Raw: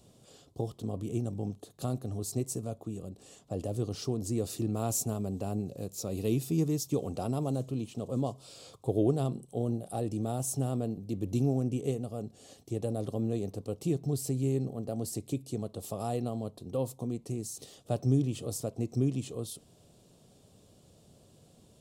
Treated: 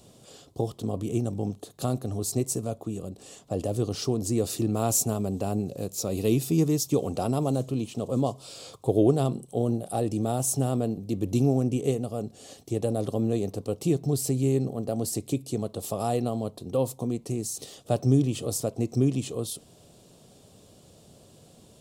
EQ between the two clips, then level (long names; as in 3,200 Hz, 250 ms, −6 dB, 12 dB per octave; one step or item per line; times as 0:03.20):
low-shelf EQ 230 Hz −4 dB
+7.5 dB